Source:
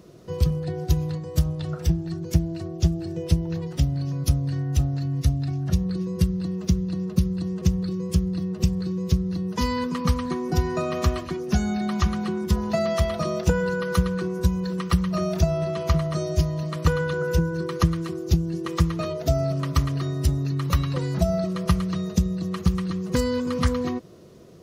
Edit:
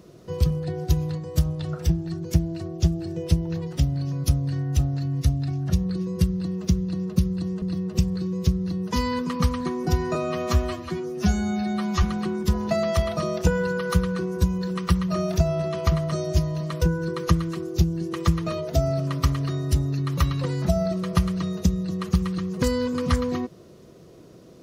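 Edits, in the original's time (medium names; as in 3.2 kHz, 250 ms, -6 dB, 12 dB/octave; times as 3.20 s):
7.62–8.27 s: delete
10.80–12.05 s: stretch 1.5×
16.84–17.34 s: delete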